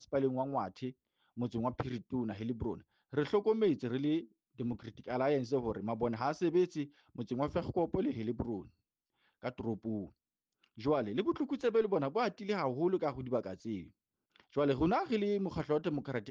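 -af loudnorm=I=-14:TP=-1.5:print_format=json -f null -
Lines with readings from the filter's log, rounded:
"input_i" : "-35.3",
"input_tp" : "-19.6",
"input_lra" : "3.4",
"input_thresh" : "-45.6",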